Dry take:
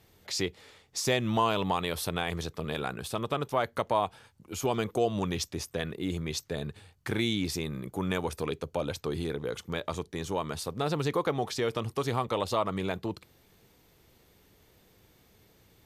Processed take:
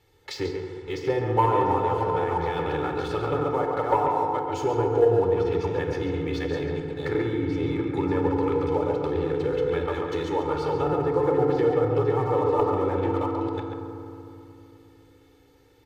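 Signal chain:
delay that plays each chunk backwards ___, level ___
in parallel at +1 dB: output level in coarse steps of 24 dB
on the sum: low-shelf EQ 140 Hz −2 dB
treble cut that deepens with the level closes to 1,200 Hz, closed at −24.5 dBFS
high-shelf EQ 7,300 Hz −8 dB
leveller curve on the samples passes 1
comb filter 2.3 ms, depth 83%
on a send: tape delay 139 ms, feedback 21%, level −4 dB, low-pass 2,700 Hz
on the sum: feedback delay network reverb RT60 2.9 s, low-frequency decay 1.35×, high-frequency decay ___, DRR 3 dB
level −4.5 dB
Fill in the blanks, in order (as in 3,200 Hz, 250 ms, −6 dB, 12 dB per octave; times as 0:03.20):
340 ms, −4 dB, 0.35×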